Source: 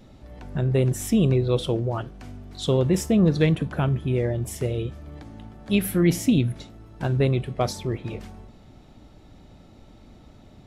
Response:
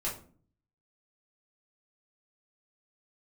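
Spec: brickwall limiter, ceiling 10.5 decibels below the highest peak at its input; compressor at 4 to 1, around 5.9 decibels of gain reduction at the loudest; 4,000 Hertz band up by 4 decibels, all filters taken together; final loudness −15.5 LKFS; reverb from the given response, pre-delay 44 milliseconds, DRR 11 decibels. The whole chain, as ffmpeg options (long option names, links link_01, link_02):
-filter_complex "[0:a]equalizer=frequency=4000:width_type=o:gain=5,acompressor=threshold=-21dB:ratio=4,alimiter=limit=-22.5dB:level=0:latency=1,asplit=2[link_01][link_02];[1:a]atrim=start_sample=2205,adelay=44[link_03];[link_02][link_03]afir=irnorm=-1:irlink=0,volume=-15dB[link_04];[link_01][link_04]amix=inputs=2:normalize=0,volume=15.5dB"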